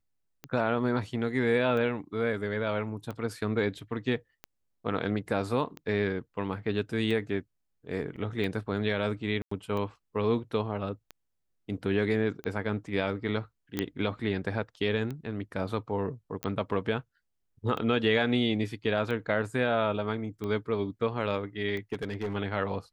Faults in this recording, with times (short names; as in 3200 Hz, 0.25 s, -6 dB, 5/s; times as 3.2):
tick 45 rpm -24 dBFS
8.16 gap 4.7 ms
9.42–9.51 gap 94 ms
13.79 pop -14 dBFS
16.43 pop -17 dBFS
21.93–22.35 clipped -27.5 dBFS